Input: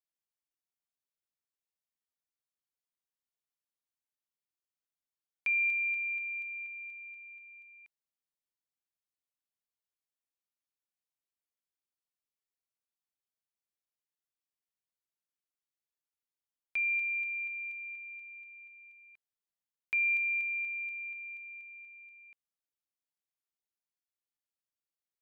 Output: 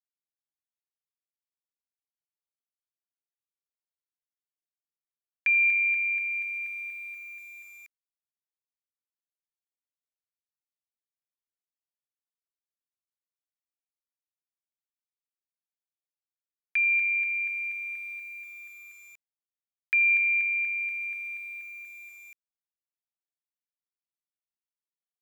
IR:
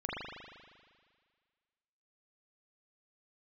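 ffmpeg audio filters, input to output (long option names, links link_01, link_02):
-filter_complex "[0:a]highpass=frequency=1700:width_type=q:width=6.8,asplit=4[link_01][link_02][link_03][link_04];[link_02]adelay=83,afreqshift=-97,volume=-19dB[link_05];[link_03]adelay=166,afreqshift=-194,volume=-26.1dB[link_06];[link_04]adelay=249,afreqshift=-291,volume=-33.3dB[link_07];[link_01][link_05][link_06][link_07]amix=inputs=4:normalize=0,aeval=exprs='val(0)*gte(abs(val(0)),0.00251)':channel_layout=same,volume=1dB"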